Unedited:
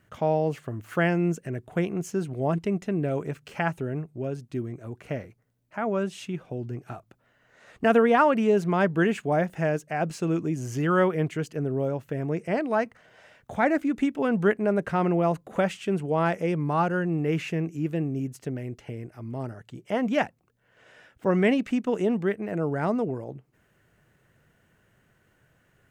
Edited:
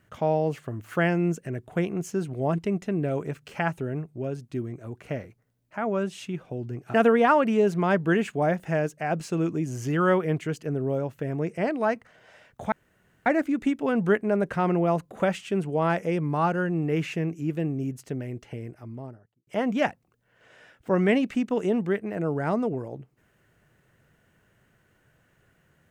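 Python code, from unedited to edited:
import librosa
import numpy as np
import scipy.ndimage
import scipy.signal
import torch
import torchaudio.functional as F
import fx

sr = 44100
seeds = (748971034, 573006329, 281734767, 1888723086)

y = fx.studio_fade_out(x, sr, start_s=18.98, length_s=0.85)
y = fx.edit(y, sr, fx.cut(start_s=6.94, length_s=0.9),
    fx.insert_room_tone(at_s=13.62, length_s=0.54), tone=tone)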